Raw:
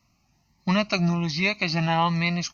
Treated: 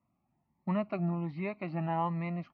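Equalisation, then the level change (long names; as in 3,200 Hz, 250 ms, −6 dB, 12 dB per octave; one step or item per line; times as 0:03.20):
resonant band-pass 450 Hz, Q 0.52
high-frequency loss of the air 500 metres
−5.0 dB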